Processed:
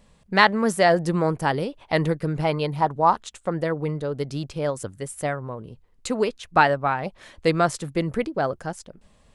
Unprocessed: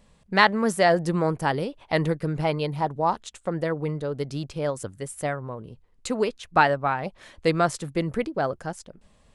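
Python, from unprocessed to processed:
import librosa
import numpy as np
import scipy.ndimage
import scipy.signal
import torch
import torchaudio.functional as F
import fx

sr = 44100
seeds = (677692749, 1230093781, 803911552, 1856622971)

y = fx.dynamic_eq(x, sr, hz=1200.0, q=1.2, threshold_db=-35.0, ratio=4.0, max_db=6, at=(2.51, 3.51), fade=0.02)
y = y * librosa.db_to_amplitude(1.5)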